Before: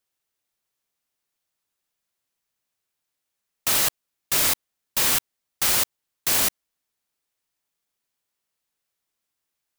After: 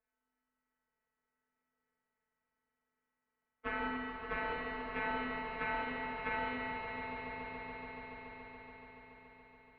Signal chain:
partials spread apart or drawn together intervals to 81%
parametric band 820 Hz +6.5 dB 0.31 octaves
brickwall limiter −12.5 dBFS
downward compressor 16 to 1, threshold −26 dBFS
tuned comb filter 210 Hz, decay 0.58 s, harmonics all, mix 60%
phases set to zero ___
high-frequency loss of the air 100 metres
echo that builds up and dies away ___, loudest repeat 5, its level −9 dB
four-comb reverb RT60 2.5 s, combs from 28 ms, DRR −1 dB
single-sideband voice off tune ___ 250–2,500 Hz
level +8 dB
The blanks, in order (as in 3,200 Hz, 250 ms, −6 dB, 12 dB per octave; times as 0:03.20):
211 Hz, 142 ms, −380 Hz